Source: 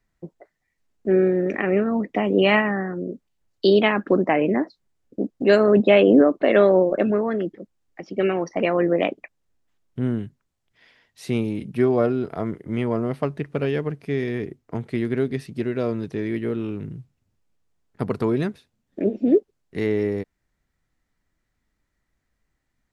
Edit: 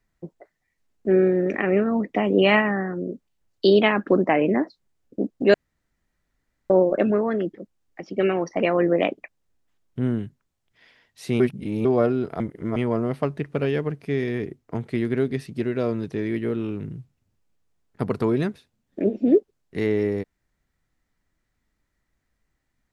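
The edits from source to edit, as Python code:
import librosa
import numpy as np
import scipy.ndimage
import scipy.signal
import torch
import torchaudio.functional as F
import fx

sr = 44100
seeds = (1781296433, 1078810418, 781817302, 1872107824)

y = fx.edit(x, sr, fx.room_tone_fill(start_s=5.54, length_s=1.16),
    fx.reverse_span(start_s=11.4, length_s=0.45),
    fx.reverse_span(start_s=12.4, length_s=0.36), tone=tone)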